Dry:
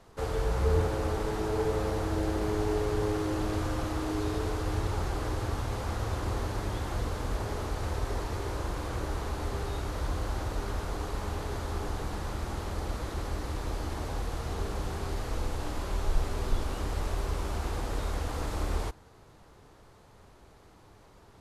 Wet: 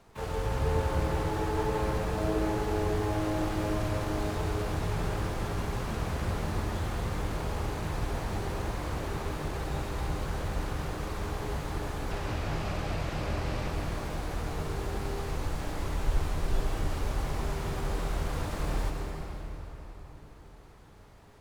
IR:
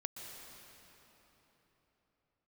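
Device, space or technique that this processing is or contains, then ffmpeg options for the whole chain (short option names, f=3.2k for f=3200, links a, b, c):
shimmer-style reverb: -filter_complex "[0:a]asettb=1/sr,asplit=3[a][b][c];[a]atrim=end=12.114[d];[b]atrim=start=12.11:end=13.7,asetpts=PTS-STARTPTS,afade=t=in:d=0.004:c=qsin,afade=t=out:st=1.586:d=0.004:c=qsin,equalizer=f=100:t=o:w=0.67:g=6,equalizer=f=630:t=o:w=0.67:g=6,equalizer=f=2.5k:t=o:w=0.67:g=10,equalizer=f=10k:t=o:w=0.67:g=-10[e];[c]atrim=start=13.696[f];[d][e]acrossfade=d=0.004:c1=hsin:c2=qsin[g];[g][f]acrossfade=d=0.004:c1=qsin:c2=hsin,asplit=2[h][i];[i]asetrate=88200,aresample=44100,atempo=0.5,volume=-6dB[j];[h][j]amix=inputs=2:normalize=0[k];[1:a]atrim=start_sample=2205[l];[k][l]afir=irnorm=-1:irlink=0"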